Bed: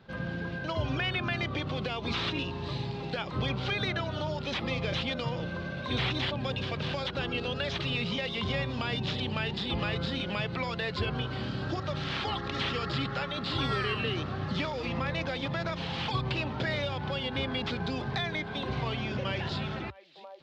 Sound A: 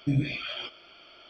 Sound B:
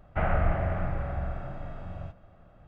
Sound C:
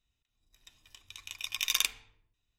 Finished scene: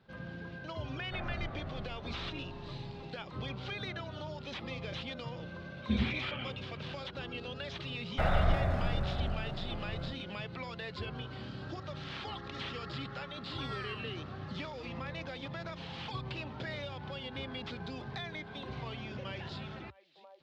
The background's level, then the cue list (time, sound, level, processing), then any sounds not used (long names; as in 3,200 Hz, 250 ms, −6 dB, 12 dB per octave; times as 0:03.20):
bed −9 dB
0:00.96: mix in B −15 dB
0:05.82: mix in A −2.5 dB + single-sideband voice off tune −69 Hz 160–2,900 Hz
0:08.02: mix in B −2 dB + dead-zone distortion −49.5 dBFS
not used: C